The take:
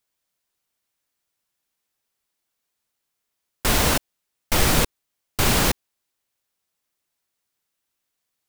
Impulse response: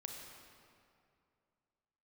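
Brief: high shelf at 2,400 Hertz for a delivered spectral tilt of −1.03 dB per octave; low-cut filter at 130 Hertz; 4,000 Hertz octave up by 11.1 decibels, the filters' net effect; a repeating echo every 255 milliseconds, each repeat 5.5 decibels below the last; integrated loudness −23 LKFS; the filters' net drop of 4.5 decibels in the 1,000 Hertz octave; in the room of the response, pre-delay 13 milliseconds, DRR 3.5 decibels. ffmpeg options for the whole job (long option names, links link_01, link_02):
-filter_complex "[0:a]highpass=130,equalizer=frequency=1000:width_type=o:gain=-8,highshelf=frequency=2400:gain=7.5,equalizer=frequency=4000:width_type=o:gain=7.5,aecho=1:1:255|510|765|1020|1275|1530|1785:0.531|0.281|0.149|0.079|0.0419|0.0222|0.0118,asplit=2[link_01][link_02];[1:a]atrim=start_sample=2205,adelay=13[link_03];[link_02][link_03]afir=irnorm=-1:irlink=0,volume=-1dB[link_04];[link_01][link_04]amix=inputs=2:normalize=0,volume=-10dB"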